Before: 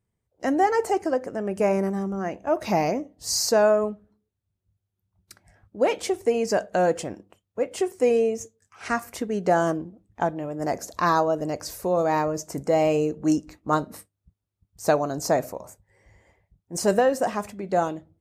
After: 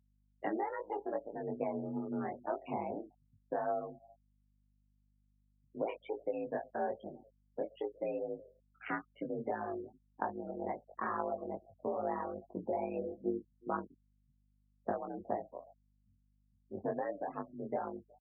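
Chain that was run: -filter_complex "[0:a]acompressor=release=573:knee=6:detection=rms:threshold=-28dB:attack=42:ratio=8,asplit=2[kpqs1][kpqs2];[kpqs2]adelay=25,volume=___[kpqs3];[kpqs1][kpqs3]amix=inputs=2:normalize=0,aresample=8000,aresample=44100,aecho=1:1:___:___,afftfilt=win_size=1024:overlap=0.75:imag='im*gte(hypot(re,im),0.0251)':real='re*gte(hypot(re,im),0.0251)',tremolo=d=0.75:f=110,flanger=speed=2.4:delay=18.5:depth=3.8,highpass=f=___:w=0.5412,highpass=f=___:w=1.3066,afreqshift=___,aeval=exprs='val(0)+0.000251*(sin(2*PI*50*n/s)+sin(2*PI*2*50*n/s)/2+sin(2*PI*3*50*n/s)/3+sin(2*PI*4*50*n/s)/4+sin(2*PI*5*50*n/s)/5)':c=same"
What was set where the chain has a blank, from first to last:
-12.5dB, 367, 0.075, 44, 44, 45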